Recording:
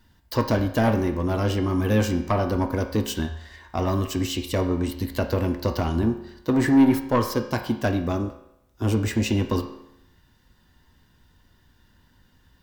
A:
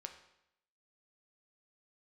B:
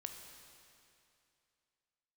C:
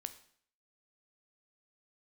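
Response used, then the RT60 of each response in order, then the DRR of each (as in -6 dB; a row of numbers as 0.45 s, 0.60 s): A; 0.80 s, 2.6 s, 0.55 s; 4.5 dB, 4.0 dB, 10.0 dB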